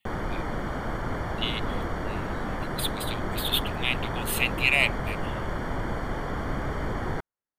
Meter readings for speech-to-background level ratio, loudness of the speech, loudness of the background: 4.5 dB, −27.5 LKFS, −32.0 LKFS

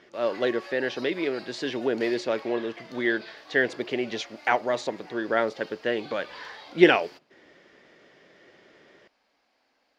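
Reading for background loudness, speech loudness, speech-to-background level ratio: −45.5 LKFS, −27.0 LKFS, 18.5 dB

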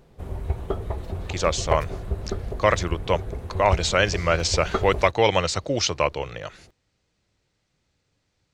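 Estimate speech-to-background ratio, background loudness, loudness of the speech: 8.5 dB, −31.5 LKFS, −23.0 LKFS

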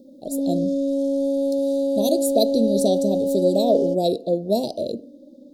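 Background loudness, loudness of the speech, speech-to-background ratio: −23.0 LKFS, −23.5 LKFS, −0.5 dB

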